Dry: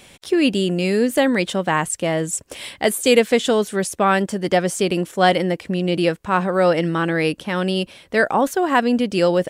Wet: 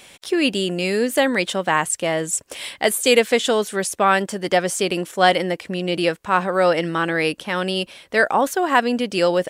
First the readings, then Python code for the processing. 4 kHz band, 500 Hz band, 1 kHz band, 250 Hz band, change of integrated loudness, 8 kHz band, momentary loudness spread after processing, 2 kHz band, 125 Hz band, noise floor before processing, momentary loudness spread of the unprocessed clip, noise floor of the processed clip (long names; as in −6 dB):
+2.0 dB, −1.0 dB, +0.5 dB, −4.0 dB, −0.5 dB, +2.0 dB, 7 LU, +1.5 dB, −5.5 dB, −47 dBFS, 6 LU, −50 dBFS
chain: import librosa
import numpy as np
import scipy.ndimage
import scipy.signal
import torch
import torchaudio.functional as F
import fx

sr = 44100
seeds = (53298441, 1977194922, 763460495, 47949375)

y = fx.low_shelf(x, sr, hz=330.0, db=-9.5)
y = y * 10.0 ** (2.0 / 20.0)